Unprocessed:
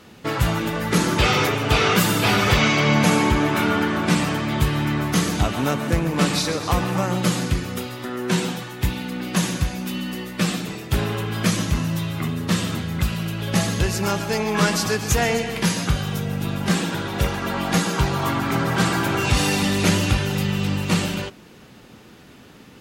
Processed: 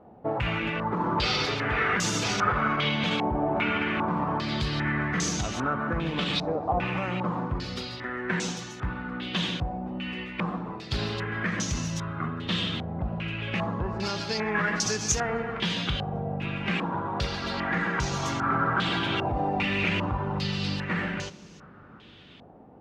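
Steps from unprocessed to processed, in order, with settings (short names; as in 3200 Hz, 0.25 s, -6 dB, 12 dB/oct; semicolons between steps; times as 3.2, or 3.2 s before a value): limiter -12.5 dBFS, peak gain reduction 8 dB; on a send at -16.5 dB: reverb RT60 2.9 s, pre-delay 3 ms; on the sum: stepped low-pass 2.5 Hz 740–6200 Hz; gain -7 dB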